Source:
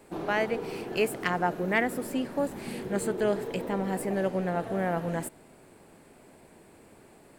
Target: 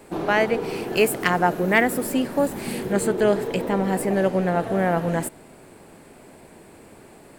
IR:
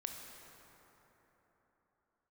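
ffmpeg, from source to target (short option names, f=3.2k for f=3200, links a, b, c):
-filter_complex "[0:a]asettb=1/sr,asplit=3[a][b][c];[a]atrim=end=0.824[d];[b]atrim=start=0.82:end=2.93,asetpts=PTS-STARTPTS,afade=t=in:d=0.004:c=qsin,afade=t=out:st=2.106:d=0.004:c=qsin,highshelf=f=9.5k:g=8[e];[c]atrim=start=2.926[f];[d][e]acrossfade=d=0.004:c1=hsin:c2=qsin[g];[g][f]acrossfade=d=0.004:c1=qsin:c2=hsin,volume=7.5dB"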